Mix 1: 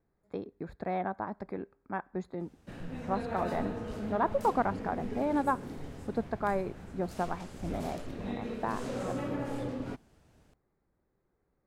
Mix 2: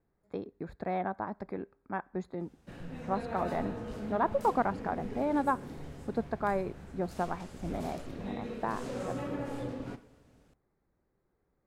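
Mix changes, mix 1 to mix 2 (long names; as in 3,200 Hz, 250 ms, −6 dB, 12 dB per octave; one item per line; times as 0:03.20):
background −3.5 dB
reverb: on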